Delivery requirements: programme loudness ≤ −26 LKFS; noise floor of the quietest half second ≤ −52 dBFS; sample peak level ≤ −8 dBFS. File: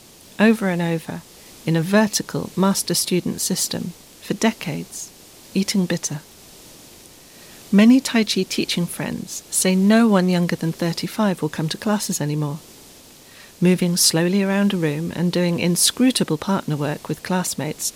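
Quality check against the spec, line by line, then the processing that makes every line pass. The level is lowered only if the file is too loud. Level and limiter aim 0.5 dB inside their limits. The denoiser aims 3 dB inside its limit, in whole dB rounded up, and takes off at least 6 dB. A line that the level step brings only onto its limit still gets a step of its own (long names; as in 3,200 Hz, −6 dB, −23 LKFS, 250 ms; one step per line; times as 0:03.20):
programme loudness −20.0 LKFS: out of spec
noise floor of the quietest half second −45 dBFS: out of spec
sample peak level −3.0 dBFS: out of spec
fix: broadband denoise 6 dB, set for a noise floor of −45 dBFS
level −6.5 dB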